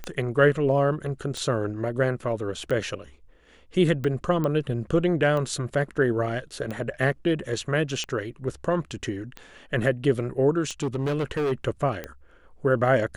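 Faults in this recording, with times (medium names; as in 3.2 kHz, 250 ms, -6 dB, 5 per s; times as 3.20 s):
tick 45 rpm -19 dBFS
4.44 s: pop -16 dBFS
10.83–11.53 s: clipped -22 dBFS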